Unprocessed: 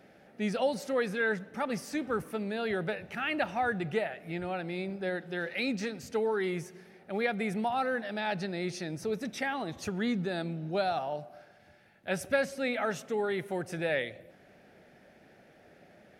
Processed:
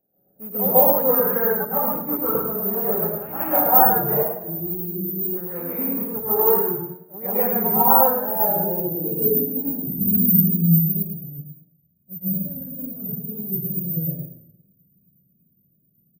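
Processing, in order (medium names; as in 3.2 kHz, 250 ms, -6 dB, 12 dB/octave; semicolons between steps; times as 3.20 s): local Wiener filter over 41 samples; low-pass sweep 990 Hz -> 180 Hz, 8.04–9.94 s; hard clipper -17.5 dBFS, distortion -41 dB; careless resampling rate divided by 3×, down filtered, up zero stuff; 4.22–5.28 s: time-frequency box 430–8700 Hz -22 dB; 10.21–11.22 s: high-order bell 1 kHz -14 dB; on a send: feedback delay 107 ms, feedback 25%, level -3.5 dB; on the sum: plate-style reverb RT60 1 s, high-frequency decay 0.5×, pre-delay 120 ms, DRR -9.5 dB; wow and flutter 47 cents; upward expansion 1.5:1, over -46 dBFS; trim -1 dB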